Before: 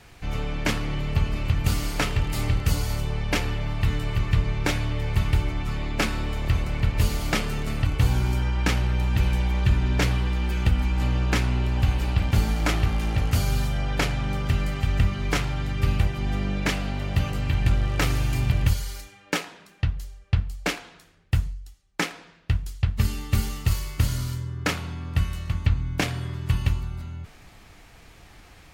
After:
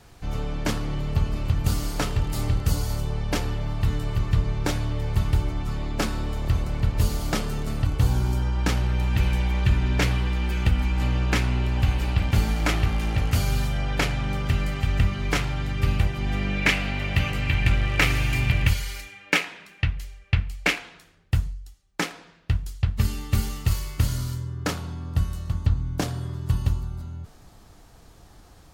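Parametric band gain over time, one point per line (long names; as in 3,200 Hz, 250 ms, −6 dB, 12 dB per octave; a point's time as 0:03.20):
parametric band 2,300 Hz 0.99 octaves
0:08.49 −7.5 dB
0:09.15 +1.5 dB
0:16.16 +1.5 dB
0:16.61 +10 dB
0:20.57 +10 dB
0:21.34 −2 dB
0:23.93 −2 dB
0:25.21 −12.5 dB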